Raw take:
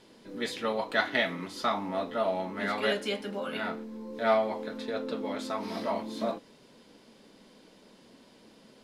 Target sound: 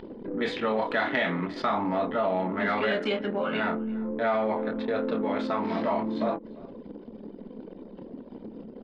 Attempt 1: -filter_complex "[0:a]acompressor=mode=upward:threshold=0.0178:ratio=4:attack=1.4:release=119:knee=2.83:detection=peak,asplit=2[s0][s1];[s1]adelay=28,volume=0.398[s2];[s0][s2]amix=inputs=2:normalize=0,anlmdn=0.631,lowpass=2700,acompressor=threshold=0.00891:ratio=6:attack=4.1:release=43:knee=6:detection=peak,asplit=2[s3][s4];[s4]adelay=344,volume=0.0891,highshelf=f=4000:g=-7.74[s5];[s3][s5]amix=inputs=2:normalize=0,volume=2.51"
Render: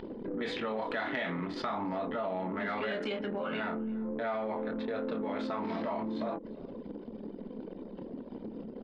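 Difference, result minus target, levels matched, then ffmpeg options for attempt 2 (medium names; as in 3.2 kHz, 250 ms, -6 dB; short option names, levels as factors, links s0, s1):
compression: peak gain reduction +8.5 dB
-filter_complex "[0:a]acompressor=mode=upward:threshold=0.0178:ratio=4:attack=1.4:release=119:knee=2.83:detection=peak,asplit=2[s0][s1];[s1]adelay=28,volume=0.398[s2];[s0][s2]amix=inputs=2:normalize=0,anlmdn=0.631,lowpass=2700,acompressor=threshold=0.0282:ratio=6:attack=4.1:release=43:knee=6:detection=peak,asplit=2[s3][s4];[s4]adelay=344,volume=0.0891,highshelf=f=4000:g=-7.74[s5];[s3][s5]amix=inputs=2:normalize=0,volume=2.51"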